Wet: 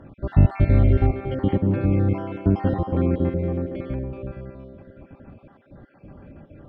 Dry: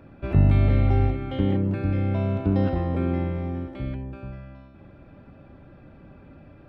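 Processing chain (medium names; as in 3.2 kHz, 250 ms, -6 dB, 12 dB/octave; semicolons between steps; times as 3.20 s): random holes in the spectrogram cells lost 40%; low-pass 2.4 kHz 6 dB/octave; band-passed feedback delay 230 ms, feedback 61%, band-pass 470 Hz, level -7 dB; trim +4 dB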